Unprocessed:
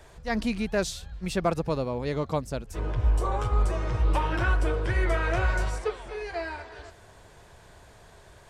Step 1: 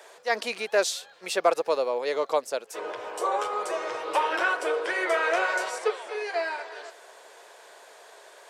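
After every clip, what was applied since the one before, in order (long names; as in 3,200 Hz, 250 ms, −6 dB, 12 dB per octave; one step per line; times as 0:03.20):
Chebyshev high-pass filter 460 Hz, order 3
level +5.5 dB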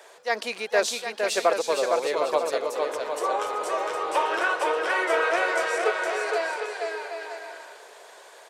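bouncing-ball delay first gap 460 ms, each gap 0.65×, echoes 5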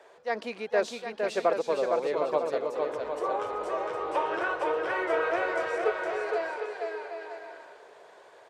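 RIAA equalisation playback
level −5 dB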